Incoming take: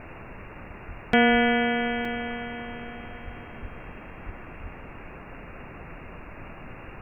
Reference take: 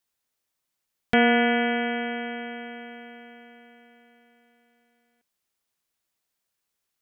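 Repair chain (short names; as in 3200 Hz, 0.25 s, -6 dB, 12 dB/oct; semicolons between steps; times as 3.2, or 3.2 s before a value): de-plosive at 0.87/1.31/3.24/3.61/4.25/4.62; interpolate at 2.05, 2.5 ms; noise print and reduce 30 dB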